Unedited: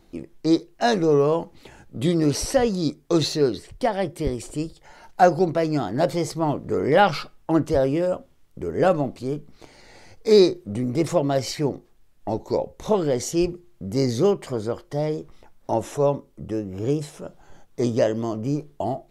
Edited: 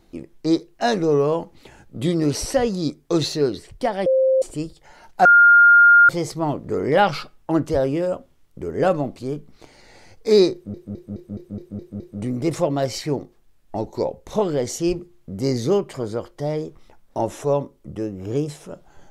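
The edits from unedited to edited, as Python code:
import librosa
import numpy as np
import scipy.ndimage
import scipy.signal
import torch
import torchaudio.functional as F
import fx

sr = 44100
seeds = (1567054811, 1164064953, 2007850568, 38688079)

y = fx.edit(x, sr, fx.bleep(start_s=4.06, length_s=0.36, hz=526.0, db=-13.5),
    fx.bleep(start_s=5.25, length_s=0.84, hz=1410.0, db=-7.5),
    fx.stutter(start_s=10.53, slice_s=0.21, count=8), tone=tone)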